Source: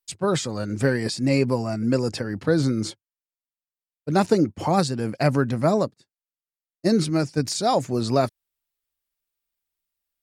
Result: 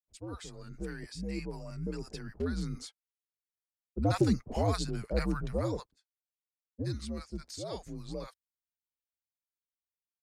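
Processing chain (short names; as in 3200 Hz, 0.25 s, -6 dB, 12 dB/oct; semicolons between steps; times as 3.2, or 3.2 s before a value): Doppler pass-by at 4.25, 11 m/s, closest 12 m; frequency shift -85 Hz; bands offset in time lows, highs 60 ms, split 800 Hz; gain -7 dB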